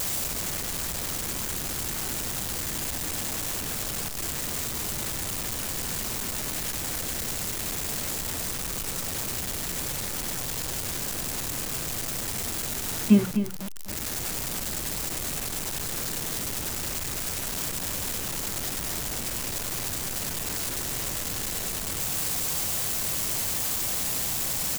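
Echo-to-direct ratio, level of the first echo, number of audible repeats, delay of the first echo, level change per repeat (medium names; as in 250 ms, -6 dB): -9.0 dB, -9.0 dB, 1, 252 ms, no regular repeats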